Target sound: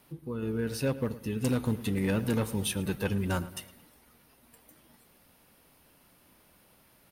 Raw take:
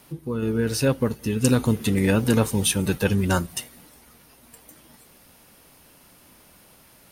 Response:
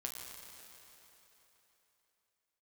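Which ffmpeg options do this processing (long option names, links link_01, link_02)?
-filter_complex "[0:a]equalizer=frequency=6900:width_type=o:width=1:gain=-5.5,volume=13.5dB,asoftclip=hard,volume=-13.5dB,asplit=2[link_01][link_02];[link_02]adelay=109,lowpass=frequency=3400:poles=1,volume=-16dB,asplit=2[link_03][link_04];[link_04]adelay=109,lowpass=frequency=3400:poles=1,volume=0.44,asplit=2[link_05][link_06];[link_06]adelay=109,lowpass=frequency=3400:poles=1,volume=0.44,asplit=2[link_07][link_08];[link_08]adelay=109,lowpass=frequency=3400:poles=1,volume=0.44[link_09];[link_03][link_05][link_07][link_09]amix=inputs=4:normalize=0[link_10];[link_01][link_10]amix=inputs=2:normalize=0,volume=-8dB"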